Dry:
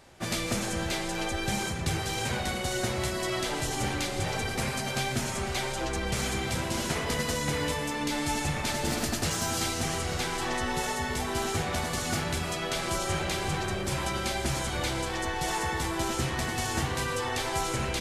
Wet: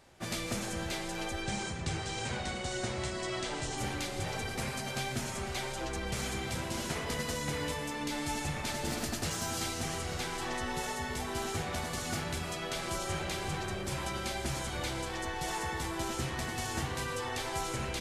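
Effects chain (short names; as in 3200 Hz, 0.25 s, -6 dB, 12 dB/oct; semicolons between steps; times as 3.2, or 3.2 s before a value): 1.42–3.78 steep low-pass 9200 Hz 48 dB/oct; gain -5.5 dB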